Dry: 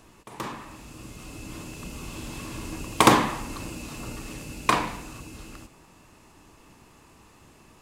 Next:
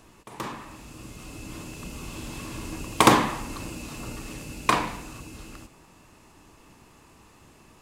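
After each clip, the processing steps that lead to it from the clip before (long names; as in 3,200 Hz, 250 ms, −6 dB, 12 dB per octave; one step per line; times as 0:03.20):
no processing that can be heard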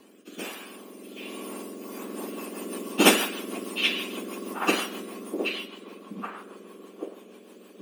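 frequency axis turned over on the octave scale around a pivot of 1,700 Hz
rotating-speaker cabinet horn 1.2 Hz, later 6.3 Hz, at 0:01.58
echo through a band-pass that steps 778 ms, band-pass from 3,000 Hz, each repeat −1.4 octaves, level −2 dB
level +4 dB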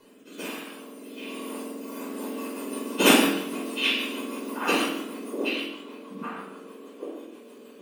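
convolution reverb RT60 0.65 s, pre-delay 14 ms, DRR −2 dB
level −4.5 dB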